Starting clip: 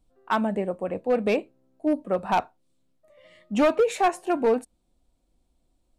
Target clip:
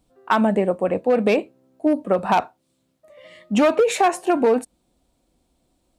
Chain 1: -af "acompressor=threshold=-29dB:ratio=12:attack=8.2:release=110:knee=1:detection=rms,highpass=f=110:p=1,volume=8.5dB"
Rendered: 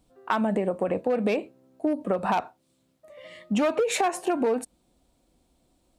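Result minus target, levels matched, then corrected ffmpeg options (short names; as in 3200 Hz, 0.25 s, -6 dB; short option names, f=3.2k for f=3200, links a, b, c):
compressor: peak gain reduction +7.5 dB
-af "acompressor=threshold=-21dB:ratio=12:attack=8.2:release=110:knee=1:detection=rms,highpass=f=110:p=1,volume=8.5dB"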